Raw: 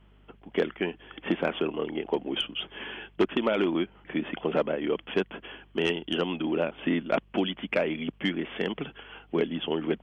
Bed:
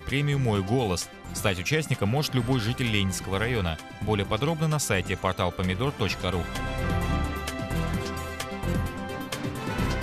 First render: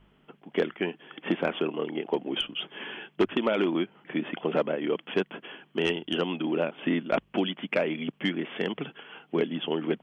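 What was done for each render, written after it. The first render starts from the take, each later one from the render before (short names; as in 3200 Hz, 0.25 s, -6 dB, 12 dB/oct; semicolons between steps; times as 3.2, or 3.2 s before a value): de-hum 50 Hz, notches 2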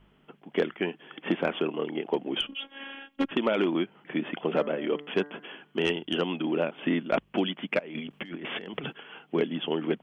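2.47–3.31 robotiser 274 Hz; 4.49–5.9 de-hum 146.2 Hz, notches 14; 7.79–8.93 negative-ratio compressor -38 dBFS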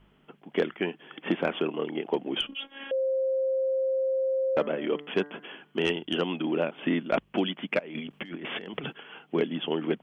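2.91–4.57 bleep 529 Hz -23.5 dBFS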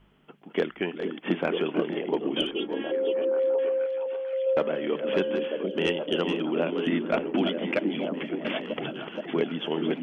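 reverse delay 0.406 s, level -8 dB; delay with a stepping band-pass 0.472 s, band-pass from 250 Hz, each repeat 0.7 oct, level -1 dB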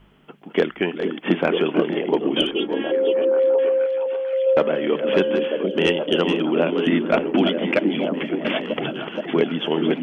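gain +7 dB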